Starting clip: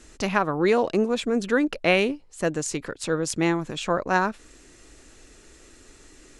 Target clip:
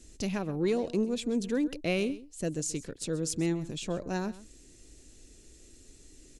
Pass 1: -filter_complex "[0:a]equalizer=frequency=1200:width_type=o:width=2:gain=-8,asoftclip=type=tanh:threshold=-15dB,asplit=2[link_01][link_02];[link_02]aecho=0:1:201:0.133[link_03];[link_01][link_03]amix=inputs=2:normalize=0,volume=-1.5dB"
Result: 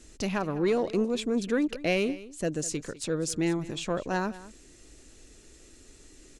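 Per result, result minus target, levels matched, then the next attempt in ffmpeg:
echo 69 ms late; 1,000 Hz band +4.5 dB
-filter_complex "[0:a]equalizer=frequency=1200:width_type=o:width=2:gain=-8,asoftclip=type=tanh:threshold=-15dB,asplit=2[link_01][link_02];[link_02]aecho=0:1:132:0.133[link_03];[link_01][link_03]amix=inputs=2:normalize=0,volume=-1.5dB"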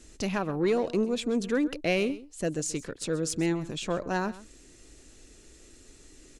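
1,000 Hz band +4.5 dB
-filter_complex "[0:a]equalizer=frequency=1200:width_type=o:width=2:gain=-18.5,asoftclip=type=tanh:threshold=-15dB,asplit=2[link_01][link_02];[link_02]aecho=0:1:132:0.133[link_03];[link_01][link_03]amix=inputs=2:normalize=0,volume=-1.5dB"

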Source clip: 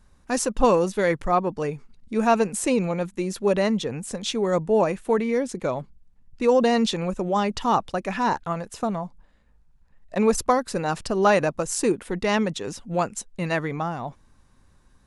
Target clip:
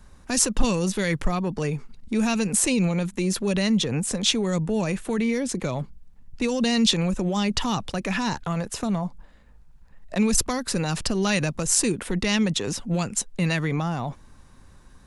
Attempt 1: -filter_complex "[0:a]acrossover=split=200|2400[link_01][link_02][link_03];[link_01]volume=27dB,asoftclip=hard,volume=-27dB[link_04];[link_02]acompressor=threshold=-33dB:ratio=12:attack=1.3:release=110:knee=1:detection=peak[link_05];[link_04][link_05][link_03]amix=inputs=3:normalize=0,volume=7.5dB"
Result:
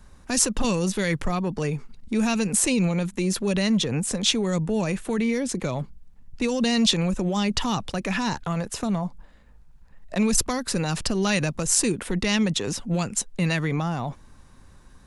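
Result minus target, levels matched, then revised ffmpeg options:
gain into a clipping stage and back: distortion +11 dB
-filter_complex "[0:a]acrossover=split=200|2400[link_01][link_02][link_03];[link_01]volume=18.5dB,asoftclip=hard,volume=-18.5dB[link_04];[link_02]acompressor=threshold=-33dB:ratio=12:attack=1.3:release=110:knee=1:detection=peak[link_05];[link_04][link_05][link_03]amix=inputs=3:normalize=0,volume=7.5dB"

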